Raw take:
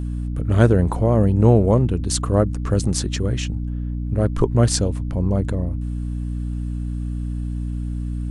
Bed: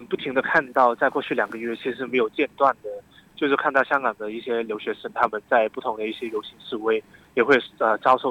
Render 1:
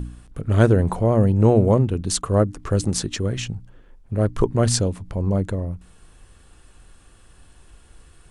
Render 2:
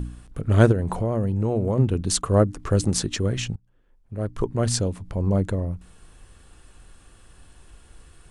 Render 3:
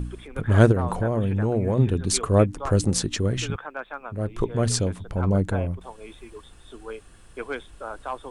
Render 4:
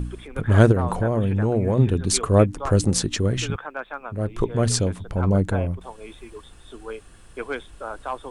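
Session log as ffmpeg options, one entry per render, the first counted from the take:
-af "bandreject=f=60:t=h:w=4,bandreject=f=120:t=h:w=4,bandreject=f=180:t=h:w=4,bandreject=f=240:t=h:w=4,bandreject=f=300:t=h:w=4"
-filter_complex "[0:a]asplit=3[a][b][c];[a]afade=t=out:st=0.71:d=0.02[d];[b]acompressor=threshold=-21dB:ratio=3:attack=3.2:release=140:knee=1:detection=peak,afade=t=in:st=0.71:d=0.02,afade=t=out:st=1.77:d=0.02[e];[c]afade=t=in:st=1.77:d=0.02[f];[d][e][f]amix=inputs=3:normalize=0,asplit=2[g][h];[g]atrim=end=3.56,asetpts=PTS-STARTPTS,afade=t=out:st=3.556:d=0.004:c=hsin:silence=0.0630957[i];[h]atrim=start=3.56,asetpts=PTS-STARTPTS,afade=t=in:d=1.84:silence=0.0630957[j];[i][j]concat=n=2:v=0:a=1"
-filter_complex "[1:a]volume=-15dB[a];[0:a][a]amix=inputs=2:normalize=0"
-af "volume=2dB,alimiter=limit=-2dB:level=0:latency=1"

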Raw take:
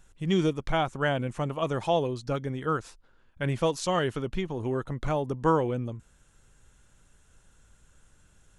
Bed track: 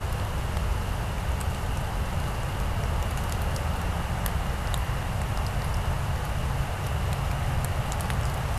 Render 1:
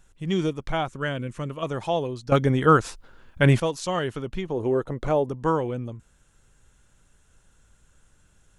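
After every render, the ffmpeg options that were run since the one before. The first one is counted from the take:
-filter_complex "[0:a]asettb=1/sr,asplit=3[a][b][c];[a]atrim=end=0.884[d];[b]atrim=start=0.88:end=1.63,asetpts=PTS-STARTPTS,afade=t=in:d=0.004:c=qsin,afade=t=out:st=0.746:d=0.004:c=qsin,equalizer=f=780:t=o:w=0.42:g=-14[e];[c]atrim=start=1.626[f];[d][e]acrossfade=d=0.004:c1=hsin:c2=qsin[g];[g][f]acrossfade=d=0.004:c1=qsin:c2=hsin,asettb=1/sr,asplit=3[h][i][j];[h]atrim=end=4.484[k];[i]atrim=start=4.48:end=5.29,asetpts=PTS-STARTPTS,afade=t=in:d=0.004:c=qsin,afade=t=out:st=0.806:d=0.004:c=qsin,equalizer=f=470:w=0.99:g=9[l];[j]atrim=start=5.286[m];[k][l]acrossfade=d=0.004:c1=hsin:c2=qsin[n];[n][m]acrossfade=d=0.004:c1=qsin:c2=hsin,asplit=3[o][p][q];[o]atrim=end=2.322[r];[p]atrim=start=2.318:end=3.602,asetpts=PTS-STARTPTS,volume=11.5dB[s];[q]atrim=start=3.598[t];[r][s]acrossfade=d=0.004:c1=hsin:c2=hsin[u];[u][t]acrossfade=d=0.004:c1=hsin:c2=hsin"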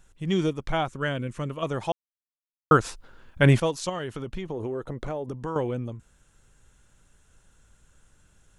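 -filter_complex "[0:a]asettb=1/sr,asplit=3[a][b][c];[a]atrim=end=3.894[d];[b]atrim=start=3.89:end=5.56,asetpts=PTS-STARTPTS,afade=t=in:d=0.004:c=qsin,afade=t=out:st=1.666:d=0.004:c=qsin,acompressor=threshold=-28dB:ratio=6:attack=3.2:release=140:knee=1:detection=peak[e];[c]atrim=start=5.556[f];[d][e]acrossfade=d=0.004:c1=hsin:c2=qsin[g];[g][f]acrossfade=d=0.004:c1=qsin:c2=hsin,asplit=3[h][i][j];[h]atrim=end=1.92,asetpts=PTS-STARTPTS,afade=t=out:st=1.916:d=0.004:c=hsin[k];[i]atrim=start=1.92:end=2.71,asetpts=PTS-STARTPTS,volume=0[l];[j]atrim=start=2.71,asetpts=PTS-STARTPTS,afade=t=in:d=0.004:c=hsin[m];[k][l][m]concat=n=3:v=0:a=1"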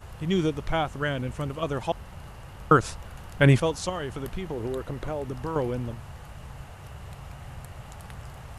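-filter_complex "[1:a]volume=-14dB[a];[0:a][a]amix=inputs=2:normalize=0"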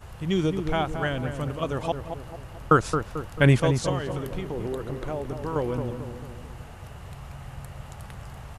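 -filter_complex "[0:a]asplit=2[a][b];[b]adelay=221,lowpass=f=1.2k:p=1,volume=-6.5dB,asplit=2[c][d];[d]adelay=221,lowpass=f=1.2k:p=1,volume=0.51,asplit=2[e][f];[f]adelay=221,lowpass=f=1.2k:p=1,volume=0.51,asplit=2[g][h];[h]adelay=221,lowpass=f=1.2k:p=1,volume=0.51,asplit=2[i][j];[j]adelay=221,lowpass=f=1.2k:p=1,volume=0.51,asplit=2[k][l];[l]adelay=221,lowpass=f=1.2k:p=1,volume=0.51[m];[a][c][e][g][i][k][m]amix=inputs=7:normalize=0"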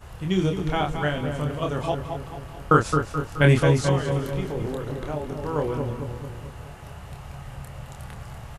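-filter_complex "[0:a]asplit=2[a][b];[b]adelay=27,volume=-4dB[c];[a][c]amix=inputs=2:normalize=0,aecho=1:1:214|428|642|856|1070|1284|1498:0.237|0.14|0.0825|0.0487|0.0287|0.017|0.01"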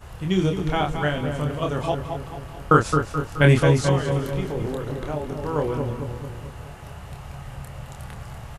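-af "volume=1.5dB"

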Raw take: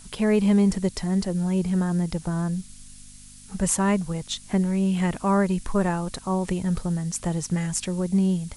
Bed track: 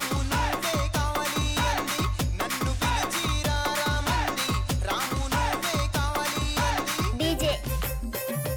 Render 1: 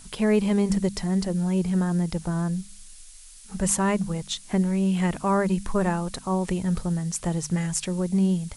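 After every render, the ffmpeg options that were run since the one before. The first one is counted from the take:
-af "bandreject=f=50:t=h:w=4,bandreject=f=100:t=h:w=4,bandreject=f=150:t=h:w=4,bandreject=f=200:t=h:w=4,bandreject=f=250:t=h:w=4"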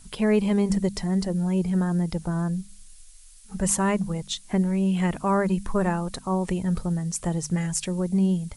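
-af "afftdn=nr=6:nf=-46"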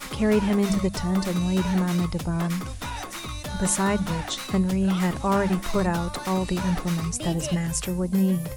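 -filter_complex "[1:a]volume=-7.5dB[a];[0:a][a]amix=inputs=2:normalize=0"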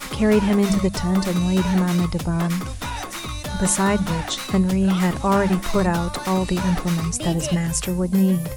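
-af "volume=4dB,alimiter=limit=-3dB:level=0:latency=1"

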